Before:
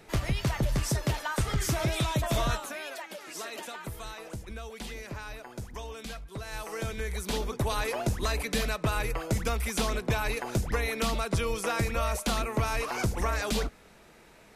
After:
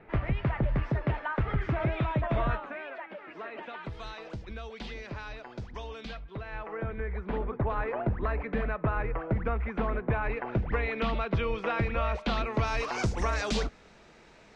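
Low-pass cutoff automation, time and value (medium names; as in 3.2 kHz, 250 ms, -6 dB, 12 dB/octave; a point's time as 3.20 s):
low-pass 24 dB/octave
3.57 s 2.3 kHz
3.97 s 4.6 kHz
6.02 s 4.6 kHz
6.78 s 1.9 kHz
10.02 s 1.9 kHz
11.07 s 3.1 kHz
12.06 s 3.1 kHz
12.99 s 6.7 kHz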